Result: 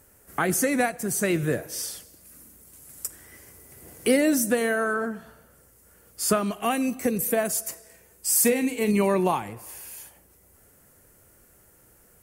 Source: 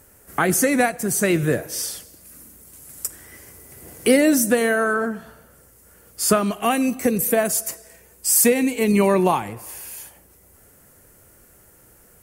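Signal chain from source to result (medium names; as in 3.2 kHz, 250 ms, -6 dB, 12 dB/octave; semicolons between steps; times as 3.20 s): 7.72–8.91 s: doubling 43 ms -11 dB; trim -5 dB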